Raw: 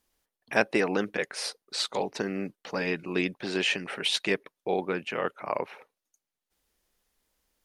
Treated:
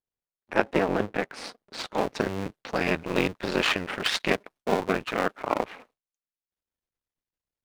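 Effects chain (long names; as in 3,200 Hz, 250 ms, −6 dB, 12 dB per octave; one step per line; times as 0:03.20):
sub-harmonics by changed cycles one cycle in 2, muted
low-pass filter 1,400 Hz 6 dB per octave, from 0:01.98 4,000 Hz
noise gate with hold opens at −53 dBFS
level +6.5 dB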